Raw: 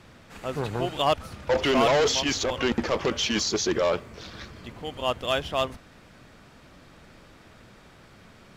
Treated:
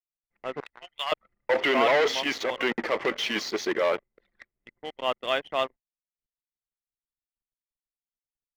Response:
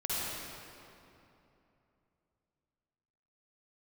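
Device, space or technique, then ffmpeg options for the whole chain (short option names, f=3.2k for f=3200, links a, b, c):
pocket radio on a weak battery: -filter_complex "[0:a]asettb=1/sr,asplit=3[a][b][c];[a]atrim=end=0.604[d];[b]atrim=start=0.6:end=1.12,asetpts=PTS-STARTPTS,afade=t=in:d=0.004:c=qsin,afade=t=out:st=0.516:d=0.004:c=qsin,highpass=1.4k[e];[c]atrim=start=1.116[f];[d][e]acrossfade=d=0.004:c1=hsin:c2=qsin[g];[g][f]acrossfade=d=0.004:c1=qsin:c2=hsin,highpass=300,lowpass=3.8k,aeval=exprs='sgn(val(0))*max(abs(val(0))-0.00501,0)':c=same,equalizer=f=2k:t=o:w=0.25:g=9,anlmdn=0.631"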